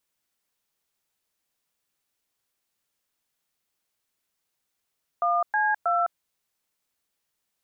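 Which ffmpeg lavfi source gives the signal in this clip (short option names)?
-f lavfi -i "aevalsrc='0.0708*clip(min(mod(t,0.318),0.208-mod(t,0.318))/0.002,0,1)*(eq(floor(t/0.318),0)*(sin(2*PI*697*mod(t,0.318))+sin(2*PI*1209*mod(t,0.318)))+eq(floor(t/0.318),1)*(sin(2*PI*852*mod(t,0.318))+sin(2*PI*1633*mod(t,0.318)))+eq(floor(t/0.318),2)*(sin(2*PI*697*mod(t,0.318))+sin(2*PI*1336*mod(t,0.318))))':d=0.954:s=44100"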